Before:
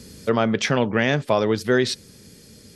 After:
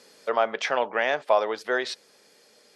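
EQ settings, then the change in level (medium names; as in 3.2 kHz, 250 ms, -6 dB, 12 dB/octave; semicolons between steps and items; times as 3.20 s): resonant high-pass 700 Hz, resonance Q 1.7; low-pass 3 kHz 6 dB/octave; -2.5 dB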